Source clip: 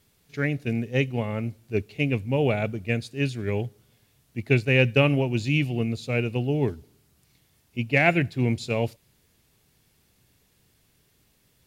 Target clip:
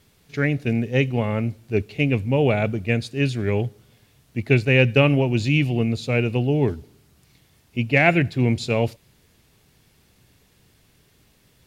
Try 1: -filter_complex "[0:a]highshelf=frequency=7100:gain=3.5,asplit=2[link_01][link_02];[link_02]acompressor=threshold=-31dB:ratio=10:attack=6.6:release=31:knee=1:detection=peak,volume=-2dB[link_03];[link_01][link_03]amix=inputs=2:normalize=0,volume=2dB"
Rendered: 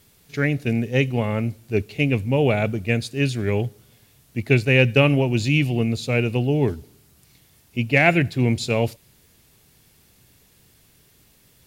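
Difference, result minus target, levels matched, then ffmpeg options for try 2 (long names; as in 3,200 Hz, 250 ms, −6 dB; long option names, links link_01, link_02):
8,000 Hz band +4.5 dB
-filter_complex "[0:a]highshelf=frequency=7100:gain=-6,asplit=2[link_01][link_02];[link_02]acompressor=threshold=-31dB:ratio=10:attack=6.6:release=31:knee=1:detection=peak,volume=-2dB[link_03];[link_01][link_03]amix=inputs=2:normalize=0,volume=2dB"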